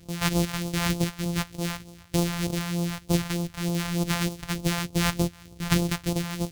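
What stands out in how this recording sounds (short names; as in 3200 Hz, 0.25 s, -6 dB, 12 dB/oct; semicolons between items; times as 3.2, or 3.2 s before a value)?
a buzz of ramps at a fixed pitch in blocks of 256 samples; phasing stages 2, 3.3 Hz, lowest notch 340–1700 Hz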